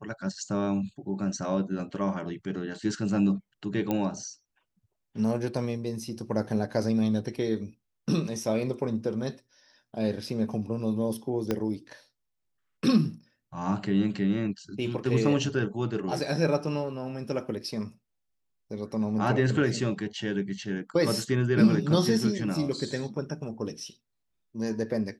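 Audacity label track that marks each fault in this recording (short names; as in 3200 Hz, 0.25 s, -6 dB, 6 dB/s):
3.910000	3.910000	pop -15 dBFS
11.510000	11.510000	pop -14 dBFS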